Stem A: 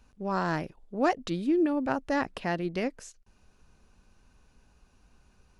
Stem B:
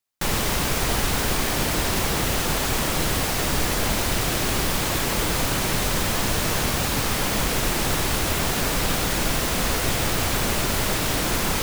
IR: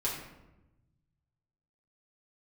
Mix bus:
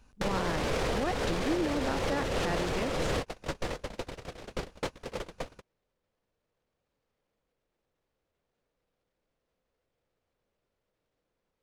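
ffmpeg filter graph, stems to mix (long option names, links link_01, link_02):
-filter_complex "[0:a]volume=0dB,asplit=2[link_01][link_02];[1:a]equalizer=frequency=500:width_type=o:width=0.62:gain=10,alimiter=limit=-20dB:level=0:latency=1:release=75,adynamicsmooth=sensitivity=3:basefreq=4400,volume=2.5dB[link_03];[link_02]apad=whole_len=512849[link_04];[link_03][link_04]sidechaingate=range=-55dB:threshold=-56dB:ratio=16:detection=peak[link_05];[link_01][link_05]amix=inputs=2:normalize=0,alimiter=limit=-20.5dB:level=0:latency=1:release=284"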